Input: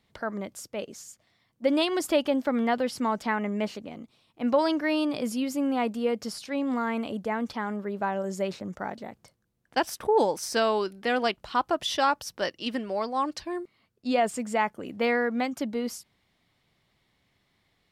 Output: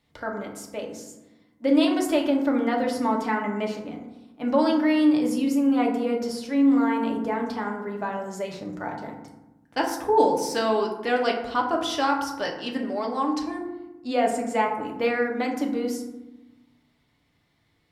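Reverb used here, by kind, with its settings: FDN reverb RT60 1 s, low-frequency decay 1.5×, high-frequency decay 0.4×, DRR 0 dB; trim -1.5 dB

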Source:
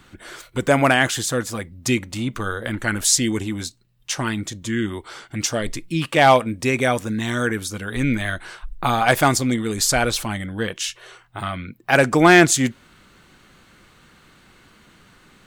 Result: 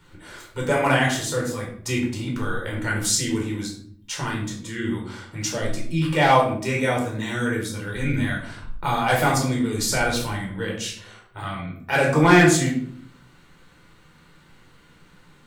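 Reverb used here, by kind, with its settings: simulated room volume 800 m³, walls furnished, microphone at 4.6 m; trim -9 dB

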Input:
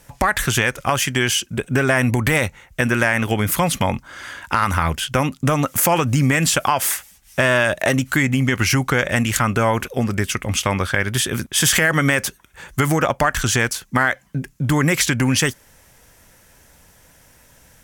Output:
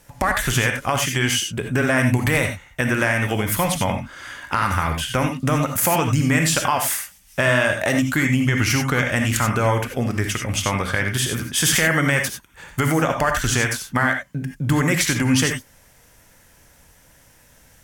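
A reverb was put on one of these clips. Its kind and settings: gated-style reverb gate 110 ms rising, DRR 4 dB; trim -3 dB

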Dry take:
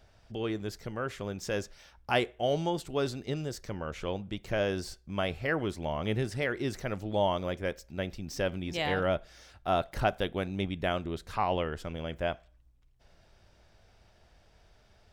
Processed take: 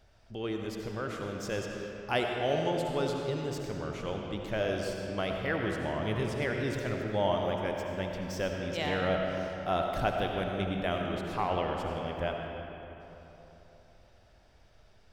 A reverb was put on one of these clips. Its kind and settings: algorithmic reverb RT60 3.5 s, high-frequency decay 0.6×, pre-delay 40 ms, DRR 1 dB; trim -2.5 dB

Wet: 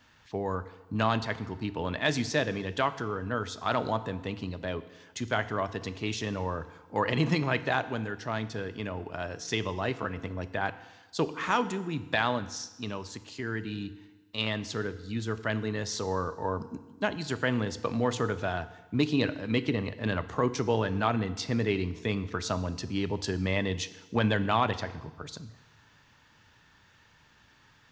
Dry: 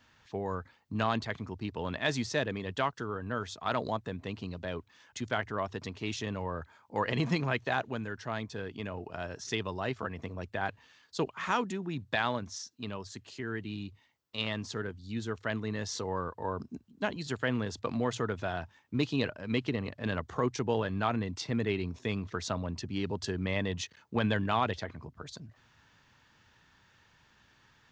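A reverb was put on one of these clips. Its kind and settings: FDN reverb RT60 1.2 s, low-frequency decay 1×, high-frequency decay 0.95×, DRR 12 dB; trim +3 dB

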